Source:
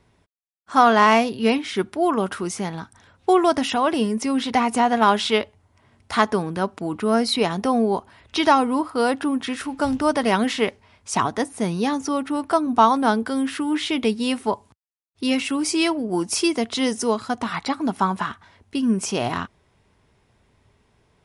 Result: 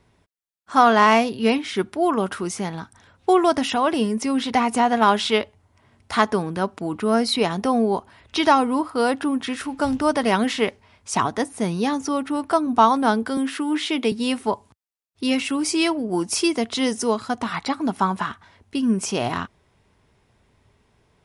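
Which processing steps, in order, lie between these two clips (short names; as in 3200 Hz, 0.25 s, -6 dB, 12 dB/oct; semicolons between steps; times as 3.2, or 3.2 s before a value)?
13.37–14.12 HPF 210 Hz 24 dB/oct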